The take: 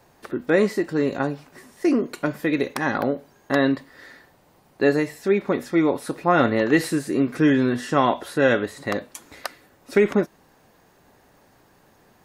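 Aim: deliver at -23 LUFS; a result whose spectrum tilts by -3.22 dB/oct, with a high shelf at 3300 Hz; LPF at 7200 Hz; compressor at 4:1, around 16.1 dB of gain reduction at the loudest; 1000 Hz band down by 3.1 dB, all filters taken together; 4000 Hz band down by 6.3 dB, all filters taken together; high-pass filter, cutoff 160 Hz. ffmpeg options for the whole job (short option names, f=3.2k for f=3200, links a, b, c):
-af "highpass=160,lowpass=7.2k,equalizer=f=1k:t=o:g=-3.5,highshelf=f=3.3k:g=-5.5,equalizer=f=4k:t=o:g=-3.5,acompressor=threshold=-34dB:ratio=4,volume=14.5dB"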